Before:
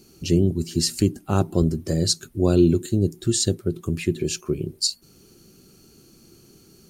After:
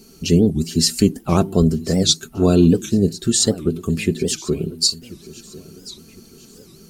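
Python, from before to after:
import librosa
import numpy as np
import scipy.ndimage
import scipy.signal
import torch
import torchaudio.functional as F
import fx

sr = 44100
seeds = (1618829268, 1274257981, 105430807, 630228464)

y = x + 0.55 * np.pad(x, (int(4.5 * sr / 1000.0), 0))[:len(x)]
y = fx.echo_feedback(y, sr, ms=1047, feedback_pct=39, wet_db=-19.0)
y = fx.record_warp(y, sr, rpm=78.0, depth_cents=250.0)
y = y * librosa.db_to_amplitude(4.5)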